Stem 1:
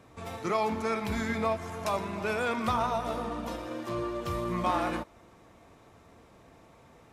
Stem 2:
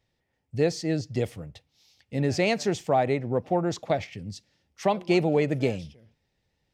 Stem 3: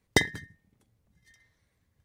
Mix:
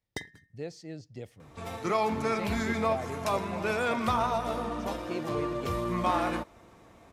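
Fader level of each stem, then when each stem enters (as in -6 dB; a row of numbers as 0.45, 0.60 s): +1.0, -15.0, -15.5 dB; 1.40, 0.00, 0.00 s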